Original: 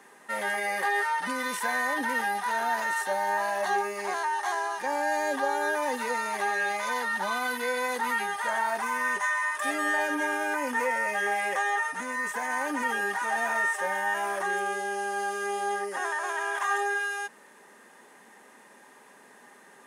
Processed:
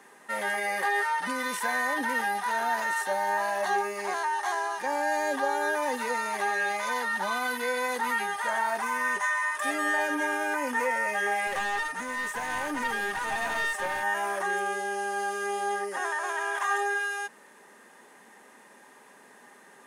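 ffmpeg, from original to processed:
ffmpeg -i in.wav -filter_complex "[0:a]asettb=1/sr,asplit=3[link_01][link_02][link_03];[link_01]atrim=end=11.474[link_04];[link_02]atrim=start=11.47:end=14.03,asetpts=PTS-STARTPTS,afade=type=in:duration=0.004:curve=qsin,afade=type=out:start_time=2.556:duration=0.004:curve=qsin,aeval=exprs='clip(val(0),-1,0.0299)':channel_layout=same[link_05];[link_03]atrim=start=14.026[link_06];[link_04][link_05]acrossfade=duration=0.004:curve1=hsin:curve2=qsin[link_07];[link_07][link_06]acrossfade=duration=0.004:curve1=qsin:curve2=hsin" out.wav

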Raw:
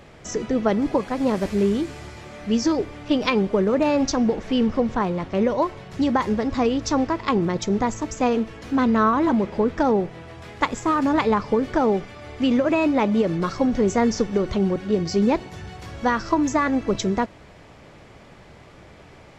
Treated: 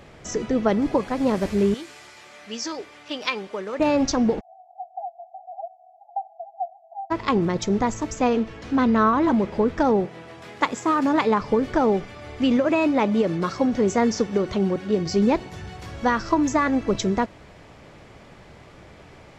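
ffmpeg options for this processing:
ffmpeg -i in.wav -filter_complex "[0:a]asettb=1/sr,asplit=3[link_01][link_02][link_03];[link_01]atrim=end=1.744[link_04];[link_02]atrim=start=1.74:end=3.8,asetpts=PTS-STARTPTS,afade=type=in:duration=0.004:curve=qsin,afade=type=out:start_time=2.056:duration=0.004:curve=qsin,highpass=frequency=1400:poles=1[link_05];[link_03]atrim=start=3.796[link_06];[link_04][link_05]acrossfade=duration=0.004:curve1=hsin:curve2=qsin[link_07];[link_07][link_06]acrossfade=duration=0.004:curve1=qsin:curve2=hsin,asplit=3[link_08][link_09][link_10];[link_08]afade=type=out:start_time=4.39:duration=0.02[link_11];[link_09]asuperpass=centerf=730:order=12:qfactor=4.8,afade=type=in:start_time=4.39:duration=0.02,afade=type=out:start_time=7.1:duration=0.02[link_12];[link_10]afade=type=in:start_time=7.1:duration=0.02[link_13];[link_11][link_12][link_13]amix=inputs=3:normalize=0,asettb=1/sr,asplit=3[link_14][link_15][link_16];[link_14]atrim=end=8.204[link_17];[link_15]atrim=start=8.2:end=9.28,asetpts=PTS-STARTPTS,afade=type=in:duration=0.004:curve=qsin,afade=type=out:start_time=1.076:duration=0.004:curve=qsin,lowpass=7100[link_18];[link_16]atrim=start=9.276[link_19];[link_17][link_18]acrossfade=duration=0.004:curve1=hsin:curve2=qsin[link_20];[link_20][link_19]acrossfade=duration=0.004:curve1=qsin:curve2=hsin,asettb=1/sr,asplit=3[link_21][link_22][link_23];[link_21]atrim=end=10.054[link_24];[link_22]atrim=start=10.05:end=11.41,asetpts=PTS-STARTPTS,afade=type=in:duration=0.004:curve=qsin,afade=type=out:start_time=1.356:duration=0.004:curve=qsin,highpass=160[link_25];[link_23]atrim=start=11.406[link_26];[link_24][link_25]acrossfade=duration=0.004:curve1=hsin:curve2=qsin[link_27];[link_27][link_26]acrossfade=duration=0.004:curve1=qsin:curve2=hsin,asettb=1/sr,asplit=3[link_28][link_29][link_30];[link_28]atrim=end=12.574[link_31];[link_29]atrim=start=12.57:end=15.06,asetpts=PTS-STARTPTS,afade=type=in:duration=0.004:curve=qsin,afade=type=out:start_time=2.486:duration=0.004:curve=qsin,highpass=frequency=120:poles=1[link_32];[link_30]atrim=start=15.056[link_33];[link_31][link_32]acrossfade=duration=0.004:curve1=hsin:curve2=qsin[link_34];[link_34][link_33]acrossfade=duration=0.004:curve1=qsin:curve2=hsin" out.wav

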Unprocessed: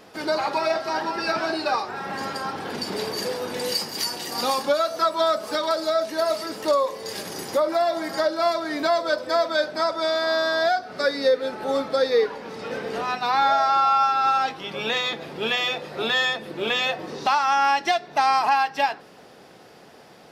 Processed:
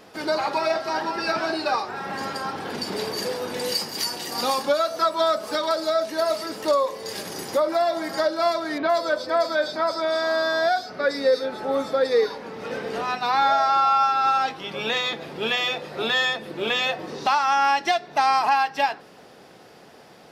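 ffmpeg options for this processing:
ffmpeg -i in.wav -filter_complex "[0:a]asettb=1/sr,asplit=3[link_01][link_02][link_03];[link_01]atrim=end=8.784[link_04];[link_02]atrim=start=8.78:end=12.66,asetpts=PTS-STARTPTS,afade=type=in:duration=0.004:curve=qsin,afade=type=out:start_time=3.876:duration=0.004:curve=qsin,acrossover=split=3600[link_05][link_06];[link_06]adelay=110[link_07];[link_05][link_07]amix=inputs=2:normalize=0,atrim=end_sample=171108[link_08];[link_03]atrim=start=12.656[link_09];[link_04][link_08]acrossfade=duration=0.004:curve1=hsin:curve2=qsin[link_10];[link_10][link_09]acrossfade=duration=0.004:curve1=qsin:curve2=hsin" out.wav

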